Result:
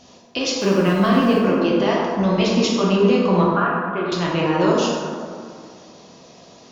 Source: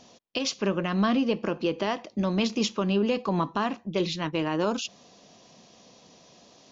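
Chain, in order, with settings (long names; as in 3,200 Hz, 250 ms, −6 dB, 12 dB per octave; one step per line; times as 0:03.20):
0:00.59–0:01.39: centre clipping without the shift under −40.5 dBFS
0:03.43–0:04.12: loudspeaker in its box 430–2,300 Hz, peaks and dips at 540 Hz −8 dB, 890 Hz −9 dB, 1,400 Hz +10 dB, 2,000 Hz −6 dB
dense smooth reverb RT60 2.2 s, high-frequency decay 0.4×, DRR −5 dB
level +3 dB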